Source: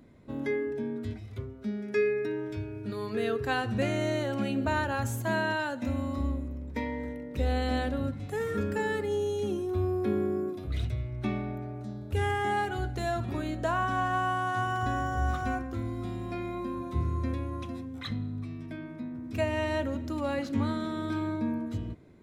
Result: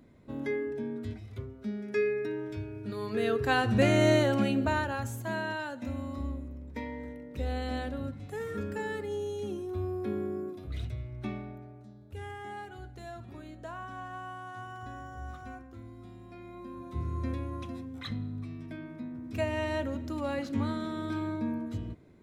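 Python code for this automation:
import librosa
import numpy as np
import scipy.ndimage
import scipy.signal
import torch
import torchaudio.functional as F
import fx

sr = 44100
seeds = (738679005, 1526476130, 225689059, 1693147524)

y = fx.gain(x, sr, db=fx.line((2.86, -2.0), (4.12, 7.0), (5.11, -5.0), (11.25, -5.0), (11.94, -13.0), (16.33, -13.0), (17.27, -2.0)))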